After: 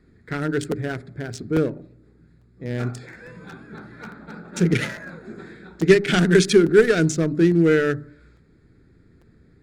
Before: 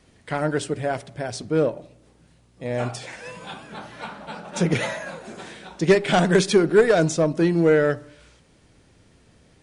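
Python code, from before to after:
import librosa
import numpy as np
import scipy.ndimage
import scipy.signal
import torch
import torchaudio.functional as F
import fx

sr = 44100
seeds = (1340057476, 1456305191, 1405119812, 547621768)

y = fx.wiener(x, sr, points=15)
y = fx.band_shelf(y, sr, hz=760.0, db=-13.5, octaves=1.3)
y = fx.hum_notches(y, sr, base_hz=50, count=6)
y = fx.buffer_crackle(y, sr, first_s=0.71, period_s=0.85, block=256, kind='repeat')
y = y * 10.0 ** (3.5 / 20.0)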